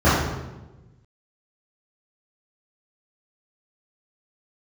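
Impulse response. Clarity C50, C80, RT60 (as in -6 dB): -0.5 dB, 3.0 dB, 1.1 s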